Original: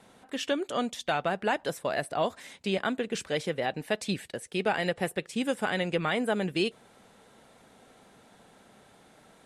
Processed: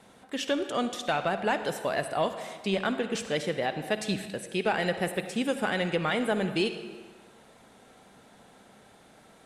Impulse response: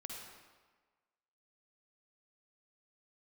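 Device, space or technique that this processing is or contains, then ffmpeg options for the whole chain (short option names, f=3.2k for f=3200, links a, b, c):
saturated reverb return: -filter_complex "[0:a]asplit=2[a][b];[1:a]atrim=start_sample=2205[c];[b][c]afir=irnorm=-1:irlink=0,asoftclip=type=tanh:threshold=-25.5dB,volume=0dB[d];[a][d]amix=inputs=2:normalize=0,volume=-2.5dB"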